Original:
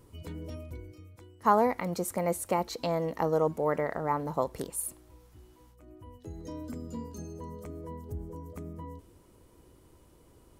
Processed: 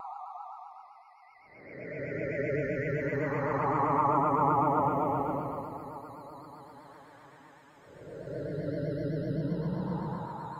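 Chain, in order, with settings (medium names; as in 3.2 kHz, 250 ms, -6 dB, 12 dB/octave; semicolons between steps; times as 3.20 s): random holes in the spectrogram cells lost 54%; level-controlled noise filter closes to 2.5 kHz, open at -27.5 dBFS; Paulstretch 34×, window 0.05 s, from 4.02 s; on a send: echo that smears into a reverb 835 ms, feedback 42%, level -15 dB; on the sum: vibrato 7.8 Hz 100 cents; trim +3 dB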